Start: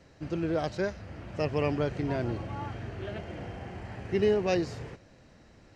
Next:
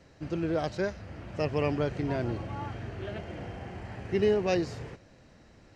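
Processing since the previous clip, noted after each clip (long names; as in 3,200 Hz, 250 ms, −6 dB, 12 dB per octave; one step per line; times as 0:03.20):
no processing that can be heard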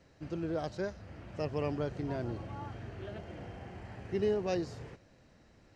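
dynamic equaliser 2,300 Hz, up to −5 dB, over −51 dBFS, Q 1.6
level −5.5 dB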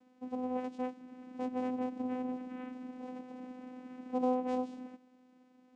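channel vocoder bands 4, saw 253 Hz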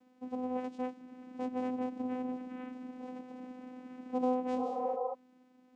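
healed spectral selection 0:04.60–0:05.11, 390–1,400 Hz before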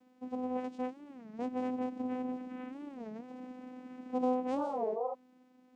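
wow of a warped record 33 1/3 rpm, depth 250 cents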